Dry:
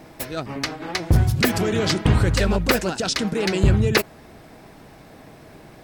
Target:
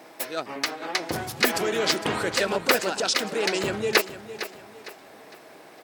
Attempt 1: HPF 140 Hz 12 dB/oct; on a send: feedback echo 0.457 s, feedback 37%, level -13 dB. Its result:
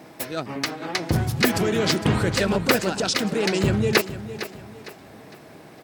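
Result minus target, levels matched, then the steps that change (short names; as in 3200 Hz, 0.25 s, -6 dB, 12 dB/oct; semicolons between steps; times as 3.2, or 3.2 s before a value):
125 Hz band +12.5 dB
change: HPF 400 Hz 12 dB/oct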